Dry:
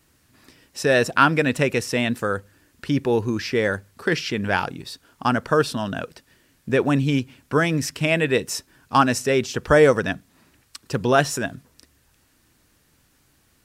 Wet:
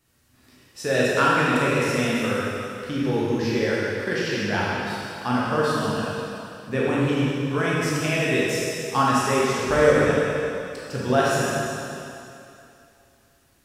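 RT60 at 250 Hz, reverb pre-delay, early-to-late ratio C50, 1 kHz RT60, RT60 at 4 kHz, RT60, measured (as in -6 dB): 2.5 s, 14 ms, -4.0 dB, 2.8 s, 2.7 s, 2.7 s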